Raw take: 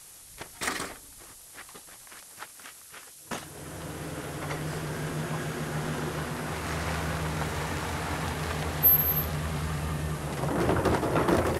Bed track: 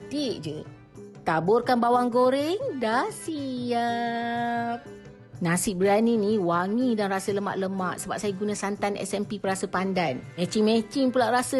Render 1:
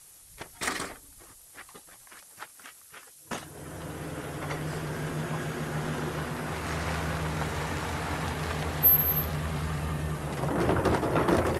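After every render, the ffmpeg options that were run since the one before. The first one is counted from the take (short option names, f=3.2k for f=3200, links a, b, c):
-af "afftdn=nr=6:nf=-50"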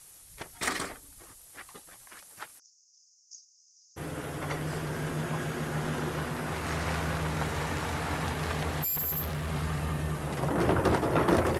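-filter_complex "[0:a]asplit=3[a][b][c];[a]afade=t=out:st=2.58:d=0.02[d];[b]asuperpass=centerf=5800:order=8:qfactor=3.1,afade=t=in:st=2.58:d=0.02,afade=t=out:st=3.96:d=0.02[e];[c]afade=t=in:st=3.96:d=0.02[f];[d][e][f]amix=inputs=3:normalize=0,asettb=1/sr,asplit=3[g][h][i];[g]atrim=end=8.824[j];[h]atrim=start=8.82:end=9.5,asetpts=PTS-STARTPTS,afade=t=in:d=0.004:c=qsin,afade=t=out:st=0.676:d=0.004:c=qsin,volume=29.5dB,asoftclip=hard,volume=-29.5dB[k];[i]atrim=start=9.496[l];[j][k]acrossfade=d=0.004:c1=hsin:c2=qsin[m];[m][l]acrossfade=d=0.004:c1=qsin:c2=hsin"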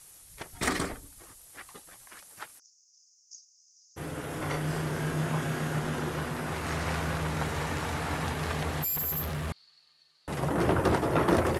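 -filter_complex "[0:a]asettb=1/sr,asplit=3[a][b][c];[a]atrim=end=0.524[d];[b]atrim=start=0.52:end=1.08,asetpts=PTS-STARTPTS,afade=t=in:d=0.004:c=qsin,afade=t=out:st=0.556:d=0.004:c=qsin,lowshelf=f=440:g=10[e];[c]atrim=start=1.076[f];[d][e]acrossfade=d=0.004:c1=hsin:c2=qsin[g];[g][f]acrossfade=d=0.004:c1=qsin:c2=hsin,asettb=1/sr,asplit=3[h][i][j];[h]atrim=end=4.274[k];[i]atrim=start=4.27:end=5.79,asetpts=PTS-STARTPTS,afade=t=in:d=0.004:c=qsin,afade=t=out:st=1.516:d=0.004:c=qsin,asplit=2[l][m];[m]adelay=32,volume=-3.5dB[n];[l][n]amix=inputs=2:normalize=0,atrim=end_sample=67032[o];[j]atrim=start=5.786[p];[k][o]acrossfade=d=0.004:c1=hsin:c2=qsin[q];[q][p]acrossfade=d=0.004:c1=qsin:c2=hsin,asettb=1/sr,asplit=3[r][s][t];[r]atrim=end=9.524[u];[s]atrim=start=9.52:end=10.28,asetpts=PTS-STARTPTS,afade=t=in:d=0.004:c=qsin,afade=t=out:st=0.756:d=0.004:c=qsin,bandpass=f=4.4k:t=q:w=19[v];[t]atrim=start=10.276[w];[u][v]acrossfade=d=0.004:c1=hsin:c2=qsin[x];[x][w]acrossfade=d=0.004:c1=qsin:c2=hsin"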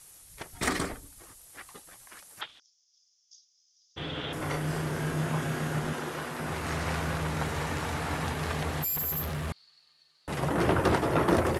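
-filter_complex "[0:a]asettb=1/sr,asplit=3[a][b][c];[a]atrim=end=2.414[d];[b]atrim=start=2.41:end=4.33,asetpts=PTS-STARTPTS,afade=t=in:d=0.004:c=qsin,afade=t=out:st=1.916:d=0.004:c=qsin,lowpass=f=3.4k:t=q:w=8.5[e];[c]atrim=start=4.326[f];[d][e]acrossfade=d=0.004:c1=hsin:c2=qsin[g];[g][f]acrossfade=d=0.004:c1=qsin:c2=hsin,asettb=1/sr,asplit=3[h][i][j];[h]atrim=end=5.934[k];[i]atrim=start=5.93:end=6.4,asetpts=PTS-STARTPTS,afade=t=in:d=0.004:c=qsin,afade=t=out:st=0.466:d=0.004:c=qsin,highpass=f=310:p=1[l];[j]atrim=start=6.396[m];[k][l]acrossfade=d=0.004:c1=hsin:c2=qsin[n];[n][m]acrossfade=d=0.004:c1=qsin:c2=hsin,asettb=1/sr,asplit=3[o][p][q];[o]atrim=end=10.294[r];[p]atrim=start=10.29:end=11.15,asetpts=PTS-STARTPTS,afade=t=in:d=0.004:c=qsin,afade=t=out:st=0.856:d=0.004:c=qsin,equalizer=f=2.8k:t=o:w=2.3:g=3[s];[q]atrim=start=11.146[t];[r][s]acrossfade=d=0.004:c1=hsin:c2=qsin[u];[u][t]acrossfade=d=0.004:c1=qsin:c2=hsin"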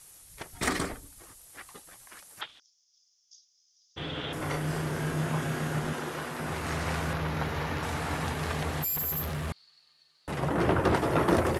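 -filter_complex "[0:a]asettb=1/sr,asplit=3[a][b][c];[a]atrim=end=7.134[d];[b]atrim=start=7.13:end=7.83,asetpts=PTS-STARTPTS,afade=t=in:d=0.004:c=qsin,afade=t=out:st=0.696:d=0.004:c=qsin,equalizer=f=8.3k:t=o:w=0.54:g=-14.5[e];[c]atrim=start=7.826[f];[d][e]acrossfade=d=0.004:c1=hsin:c2=qsin[g];[g][f]acrossfade=d=0.004:c1=qsin:c2=hsin,asettb=1/sr,asplit=3[h][i][j];[h]atrim=end=10.314[k];[i]atrim=start=10.31:end=10.95,asetpts=PTS-STARTPTS,afade=t=in:d=0.004:c=qsin,afade=t=out:st=0.636:d=0.004:c=qsin,highshelf=f=4.1k:g=-6[l];[j]atrim=start=10.946[m];[k][l]acrossfade=d=0.004:c1=hsin:c2=qsin[n];[n][m]acrossfade=d=0.004:c1=qsin:c2=hsin"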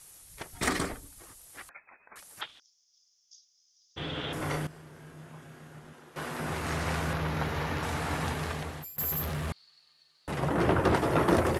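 -filter_complex "[0:a]asettb=1/sr,asplit=3[a][b][c];[a]atrim=end=1.694[d];[b]atrim=start=1.69:end=2.16,asetpts=PTS-STARTPTS,afade=t=in:d=0.004:c=qsin,afade=t=out:st=0.466:d=0.004:c=qsin,lowpass=f=2.2k:t=q:w=0.5098,lowpass=f=2.2k:t=q:w=0.6013,lowpass=f=2.2k:t=q:w=0.9,lowpass=f=2.2k:t=q:w=2.563,afreqshift=-2600[e];[c]atrim=start=2.156[f];[d][e]acrossfade=d=0.004:c1=hsin:c2=qsin[g];[g][f]acrossfade=d=0.004:c1=qsin:c2=hsin,asplit=4[h][i][j][k];[h]atrim=end=4.67,asetpts=PTS-STARTPTS,afade=t=out:st=4.47:d=0.2:c=log:silence=0.125893[l];[i]atrim=start=4.67:end=6.16,asetpts=PTS-STARTPTS,volume=-18dB[m];[j]atrim=start=6.16:end=8.98,asetpts=PTS-STARTPTS,afade=t=in:d=0.2:c=log:silence=0.125893,afade=t=out:st=2.16:d=0.66:silence=0.0749894[n];[k]atrim=start=8.98,asetpts=PTS-STARTPTS,afade=t=in:d=0.004:c=hsin:silence=0.0749894[o];[l][m][n][o]concat=n=4:v=0:a=1"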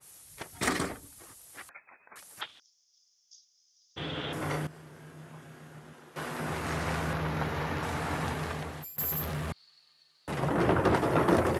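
-af "highpass=79,adynamicequalizer=threshold=0.00631:dfrequency=2300:dqfactor=0.7:tfrequency=2300:tqfactor=0.7:attack=5:release=100:ratio=0.375:range=1.5:mode=cutabove:tftype=highshelf"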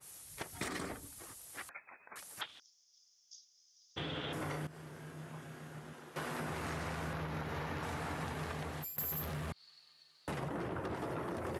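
-af "alimiter=limit=-22dB:level=0:latency=1:release=98,acompressor=threshold=-37dB:ratio=6"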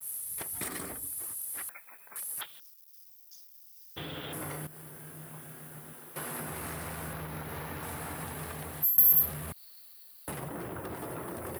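-af "acrusher=bits=10:mix=0:aa=0.000001,aexciter=amount=8.7:drive=4.5:freq=9.2k"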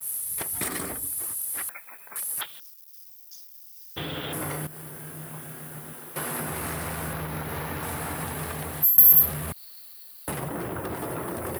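-af "volume=7dB"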